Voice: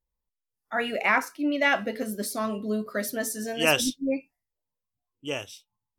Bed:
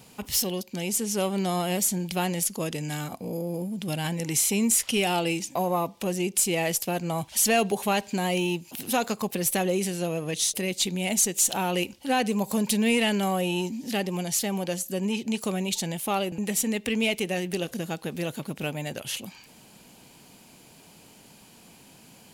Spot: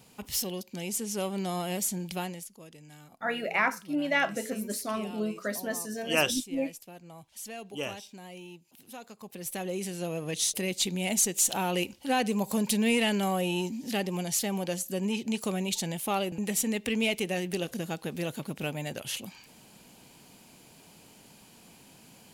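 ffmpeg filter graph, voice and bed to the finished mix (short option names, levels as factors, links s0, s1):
-filter_complex "[0:a]adelay=2500,volume=0.668[s0];[1:a]volume=3.76,afade=t=out:st=2.14:d=0.33:silence=0.199526,afade=t=in:st=9.15:d=1.3:silence=0.141254[s1];[s0][s1]amix=inputs=2:normalize=0"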